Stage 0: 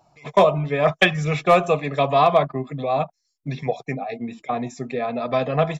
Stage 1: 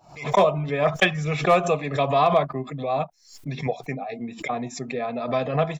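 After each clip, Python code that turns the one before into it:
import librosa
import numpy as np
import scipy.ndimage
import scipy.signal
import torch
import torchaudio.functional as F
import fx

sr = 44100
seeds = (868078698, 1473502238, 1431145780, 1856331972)

y = fx.pre_swell(x, sr, db_per_s=120.0)
y = y * 10.0 ** (-3.0 / 20.0)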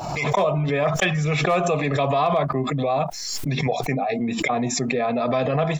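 y = fx.env_flatten(x, sr, amount_pct=70)
y = y * 10.0 ** (-4.0 / 20.0)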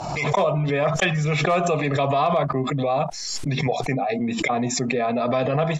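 y = scipy.signal.sosfilt(scipy.signal.butter(4, 9600.0, 'lowpass', fs=sr, output='sos'), x)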